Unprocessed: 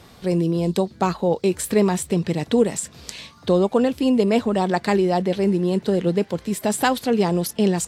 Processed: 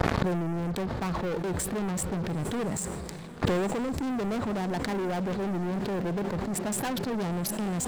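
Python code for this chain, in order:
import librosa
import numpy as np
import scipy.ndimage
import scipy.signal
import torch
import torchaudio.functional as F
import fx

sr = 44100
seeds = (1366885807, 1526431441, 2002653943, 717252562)

p1 = fx.wiener(x, sr, points=15)
p2 = scipy.signal.sosfilt(scipy.signal.butter(2, 44.0, 'highpass', fs=sr, output='sos'), p1)
p3 = fx.low_shelf(p2, sr, hz=120.0, db=7.0)
p4 = fx.leveller(p3, sr, passes=5)
p5 = fx.level_steps(p4, sr, step_db=12)
p6 = p4 + (p5 * librosa.db_to_amplitude(0.5))
p7 = fx.gate_flip(p6, sr, shuts_db=-15.0, range_db=-28)
p8 = fx.echo_diffused(p7, sr, ms=901, feedback_pct=41, wet_db=-15.0)
p9 = fx.sustainer(p8, sr, db_per_s=21.0)
y = p9 * librosa.db_to_amplitude(2.5)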